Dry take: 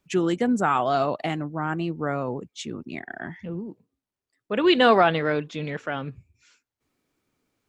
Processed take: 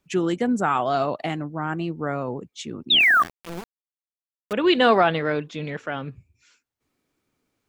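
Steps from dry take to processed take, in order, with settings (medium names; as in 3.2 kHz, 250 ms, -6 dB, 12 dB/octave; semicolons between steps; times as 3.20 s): 2.90–3.23 s: painted sound fall 1.1–3.9 kHz -16 dBFS; 3.00–4.53 s: small samples zeroed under -29 dBFS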